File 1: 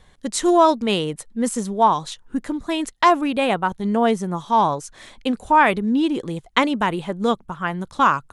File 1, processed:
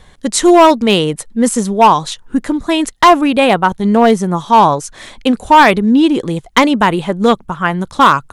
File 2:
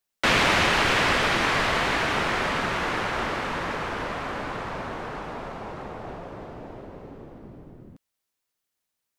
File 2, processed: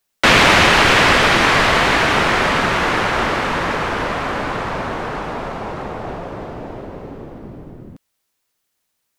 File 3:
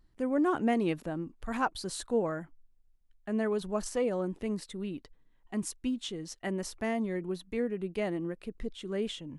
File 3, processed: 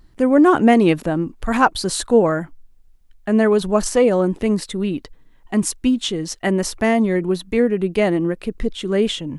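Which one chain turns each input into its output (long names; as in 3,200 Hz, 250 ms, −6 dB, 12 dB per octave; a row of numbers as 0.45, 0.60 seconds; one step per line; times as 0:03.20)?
hard clipping −11 dBFS
normalise the peak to −1.5 dBFS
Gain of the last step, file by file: +9.5, +9.5, +15.0 decibels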